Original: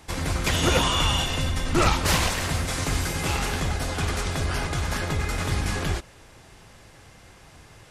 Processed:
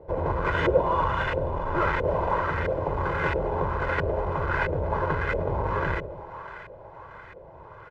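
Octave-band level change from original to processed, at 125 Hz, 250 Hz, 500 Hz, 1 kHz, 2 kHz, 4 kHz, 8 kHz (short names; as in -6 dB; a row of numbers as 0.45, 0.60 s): -4.0 dB, -4.0 dB, +5.5 dB, +2.5 dB, -0.5 dB, -17.5 dB, under -30 dB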